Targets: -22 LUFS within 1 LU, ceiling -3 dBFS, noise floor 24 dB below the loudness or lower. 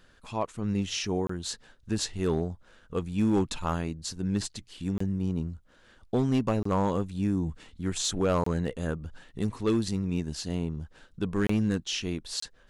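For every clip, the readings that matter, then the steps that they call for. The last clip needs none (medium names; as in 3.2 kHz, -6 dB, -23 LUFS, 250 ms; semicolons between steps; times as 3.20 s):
clipped samples 0.6%; clipping level -18.5 dBFS; dropouts 6; longest dropout 24 ms; loudness -30.0 LUFS; peak level -18.5 dBFS; loudness target -22.0 LUFS
-> clip repair -18.5 dBFS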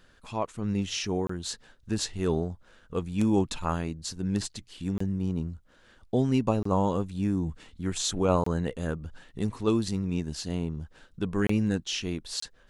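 clipped samples 0.0%; dropouts 6; longest dropout 24 ms
-> interpolate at 1.27/4.98/6.63/8.44/11.47/12.40 s, 24 ms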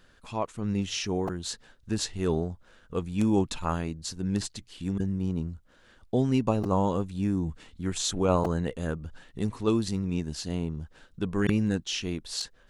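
dropouts 0; loudness -29.5 LUFS; peak level -9.5 dBFS; loudness target -22.0 LUFS
-> trim +7.5 dB; peak limiter -3 dBFS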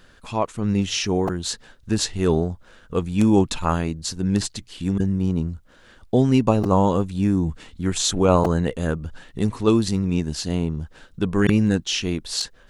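loudness -22.0 LUFS; peak level -3.0 dBFS; noise floor -52 dBFS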